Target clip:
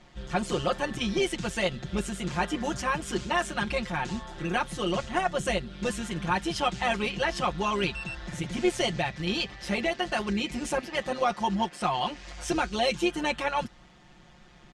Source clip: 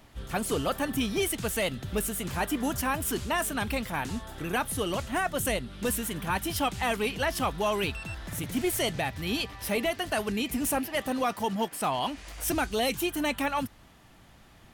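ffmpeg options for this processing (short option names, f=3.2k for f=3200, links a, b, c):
-af "lowpass=f=7.2k:w=0.5412,lowpass=f=7.2k:w=1.3066,aecho=1:1:5.6:1,tremolo=f=140:d=0.4"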